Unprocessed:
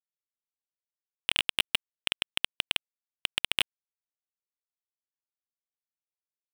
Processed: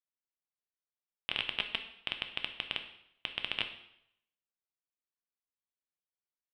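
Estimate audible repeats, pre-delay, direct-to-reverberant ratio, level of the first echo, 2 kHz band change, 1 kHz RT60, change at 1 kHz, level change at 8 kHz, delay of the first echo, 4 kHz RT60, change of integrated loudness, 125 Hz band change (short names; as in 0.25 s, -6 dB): none, 5 ms, 6.0 dB, none, -5.5 dB, 0.75 s, -4.0 dB, under -25 dB, none, 0.70 s, -7.0 dB, -3.0 dB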